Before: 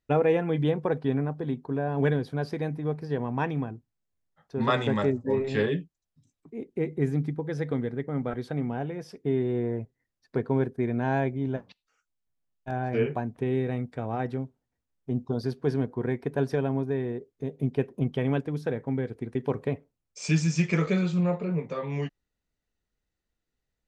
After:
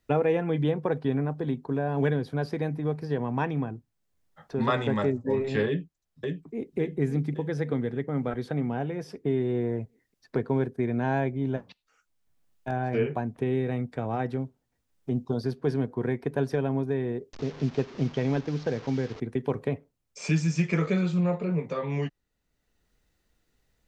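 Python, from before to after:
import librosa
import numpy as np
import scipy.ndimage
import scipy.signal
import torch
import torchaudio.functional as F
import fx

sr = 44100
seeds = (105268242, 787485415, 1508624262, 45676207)

y = fx.echo_throw(x, sr, start_s=5.67, length_s=1.1, ms=560, feedback_pct=50, wet_db=-5.5)
y = fx.delta_mod(y, sr, bps=32000, step_db=-39.5, at=(17.33, 19.2))
y = fx.band_squash(y, sr, depth_pct=40)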